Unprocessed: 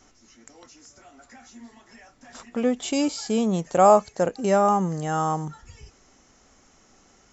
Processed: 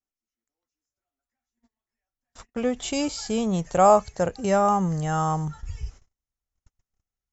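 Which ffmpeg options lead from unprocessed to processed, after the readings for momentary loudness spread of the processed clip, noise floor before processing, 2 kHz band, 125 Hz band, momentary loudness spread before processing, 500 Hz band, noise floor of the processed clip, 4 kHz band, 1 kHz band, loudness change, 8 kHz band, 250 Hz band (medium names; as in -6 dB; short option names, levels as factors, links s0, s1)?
19 LU, -58 dBFS, -0.5 dB, +2.5 dB, 10 LU, -1.5 dB, under -85 dBFS, 0.0 dB, -0.5 dB, -1.0 dB, no reading, -1.5 dB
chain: -af "asubboost=boost=8:cutoff=95,agate=range=0.01:threshold=0.00891:ratio=16:detection=peak"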